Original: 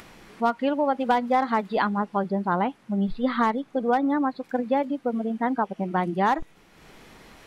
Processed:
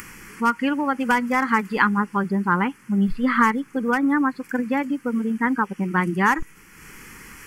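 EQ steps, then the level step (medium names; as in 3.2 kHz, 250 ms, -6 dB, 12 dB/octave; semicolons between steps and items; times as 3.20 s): treble shelf 2.2 kHz +11.5 dB; static phaser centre 1.6 kHz, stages 4; +6.0 dB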